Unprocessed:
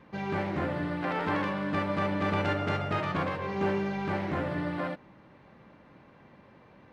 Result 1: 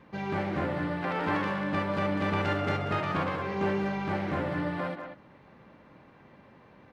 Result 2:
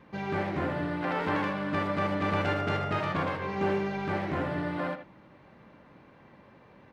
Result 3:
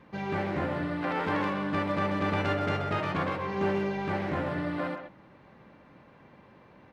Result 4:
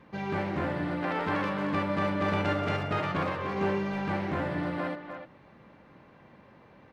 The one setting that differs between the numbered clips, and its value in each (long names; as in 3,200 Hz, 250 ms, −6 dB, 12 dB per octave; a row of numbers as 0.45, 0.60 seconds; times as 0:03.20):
far-end echo of a speakerphone, delay time: 190, 80, 130, 300 milliseconds